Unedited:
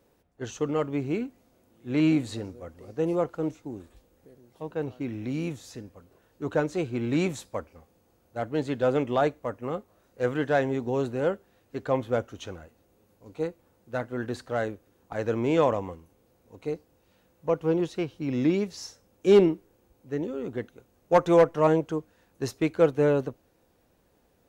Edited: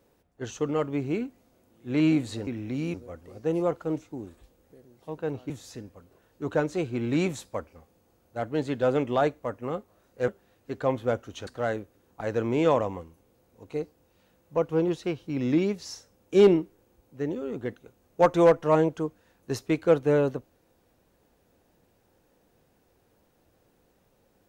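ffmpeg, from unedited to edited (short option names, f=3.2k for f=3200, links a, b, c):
-filter_complex "[0:a]asplit=6[a][b][c][d][e][f];[a]atrim=end=2.472[g];[b]atrim=start=5.028:end=5.502[h];[c]atrim=start=2.468:end=5.032[i];[d]atrim=start=5.498:end=10.282[j];[e]atrim=start=11.328:end=12.522[k];[f]atrim=start=14.388[l];[g][h]acrossfade=d=0.004:c1=hsin:c2=hsin[m];[m][i]acrossfade=d=0.004:c1=hsin:c2=hsin[n];[n][j]acrossfade=d=0.004:c1=hsin:c2=hsin[o];[o][k]acrossfade=d=0.004:c1=hsin:c2=hsin[p];[p][l]acrossfade=d=0.004:c1=hsin:c2=hsin"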